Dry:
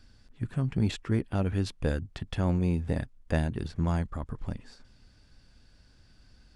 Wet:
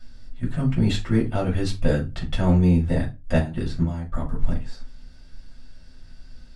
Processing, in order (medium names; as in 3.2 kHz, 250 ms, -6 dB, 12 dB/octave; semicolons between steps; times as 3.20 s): 3.00–4.27 s: trance gate "xx..x.x." 102 bpm -12 dB; reverberation RT60 0.25 s, pre-delay 3 ms, DRR -4 dB; trim -1 dB